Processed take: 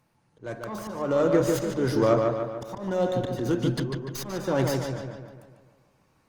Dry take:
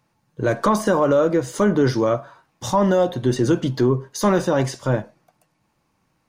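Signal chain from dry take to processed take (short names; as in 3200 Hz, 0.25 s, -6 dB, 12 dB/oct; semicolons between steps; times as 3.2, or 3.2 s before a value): tracing distortion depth 0.092 ms; auto swell 0.624 s; darkening echo 0.147 s, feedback 53%, low-pass 4500 Hz, level -3.5 dB; Opus 32 kbps 48000 Hz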